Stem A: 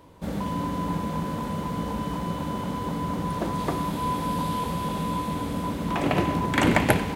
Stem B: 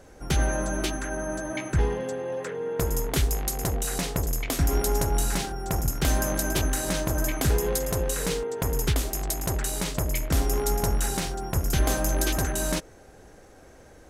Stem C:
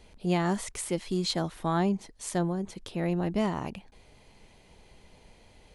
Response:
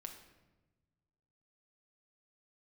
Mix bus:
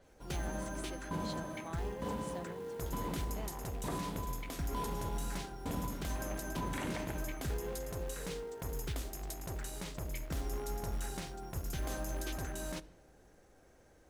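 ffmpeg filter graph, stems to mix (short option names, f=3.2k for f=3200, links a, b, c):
-filter_complex "[0:a]aeval=exprs='val(0)*pow(10,-28*if(lt(mod(1.1*n/s,1),2*abs(1.1)/1000),1-mod(1.1*n/s,1)/(2*abs(1.1)/1000),(mod(1.1*n/s,1)-2*abs(1.1)/1000)/(1-2*abs(1.1)/1000))/20)':c=same,adelay=200,volume=-4.5dB[a];[1:a]acrusher=bits=5:mode=log:mix=0:aa=0.000001,adynamicequalizer=threshold=0.00708:dfrequency=5000:dqfactor=0.7:tfrequency=5000:tqfactor=0.7:attack=5:release=100:ratio=0.375:range=2:mode=cutabove:tftype=highshelf,volume=-15dB,asplit=2[b][c];[c]volume=-6dB[d];[2:a]highpass=340,volume=-16dB[e];[3:a]atrim=start_sample=2205[f];[d][f]afir=irnorm=-1:irlink=0[g];[a][b][e][g]amix=inputs=4:normalize=0,alimiter=level_in=4.5dB:limit=-24dB:level=0:latency=1:release=40,volume=-4.5dB"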